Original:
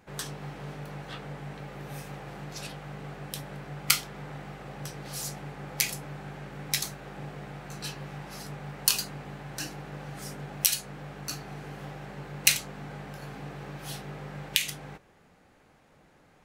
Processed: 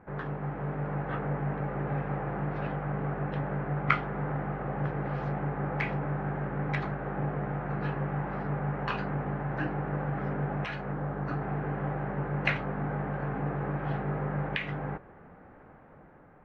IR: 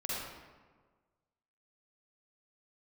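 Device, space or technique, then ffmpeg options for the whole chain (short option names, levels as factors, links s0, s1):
action camera in a waterproof case: -filter_complex "[0:a]asettb=1/sr,asplit=3[s0][s1][s2];[s0]atrim=end=10.934[s3];[s1]atrim=start=10.93:end=11.42,asetpts=PTS-STARTPTS,afade=t=in:d=0.004:c=qsin,afade=t=out:st=0.486:d=0.004:c=qsin,equalizer=f=2500:w=1.5:g=-5[s4];[s2]atrim=start=11.416[s5];[s3][s4]acrossfade=d=0.004:c1=hsin:c2=qsin[s6];[s6][s5]acrossfade=d=0.004:c1=qsin:c2=hsin,lowpass=f=1700:w=0.5412,lowpass=f=1700:w=1.3066,dynaudnorm=f=230:g=7:m=1.58,volume=1.78" -ar 48000 -c:a aac -b:a 48k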